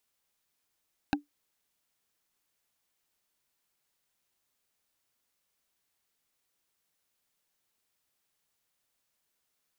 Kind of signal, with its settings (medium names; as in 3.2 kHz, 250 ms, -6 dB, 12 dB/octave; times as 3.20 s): wood hit, lowest mode 291 Hz, decay 0.14 s, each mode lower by 1 dB, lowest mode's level -20.5 dB